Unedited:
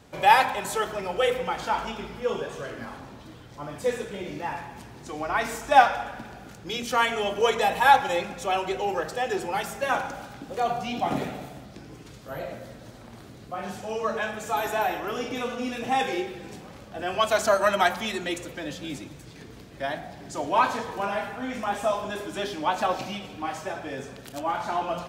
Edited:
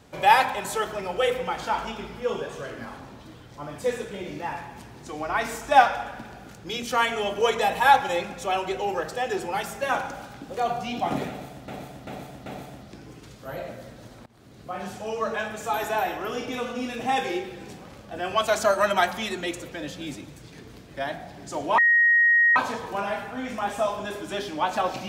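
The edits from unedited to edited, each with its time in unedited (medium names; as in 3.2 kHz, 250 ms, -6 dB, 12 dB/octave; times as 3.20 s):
11.29–11.68 s: loop, 4 plays
13.09–13.51 s: fade in, from -21.5 dB
20.61 s: add tone 1.88 kHz -15 dBFS 0.78 s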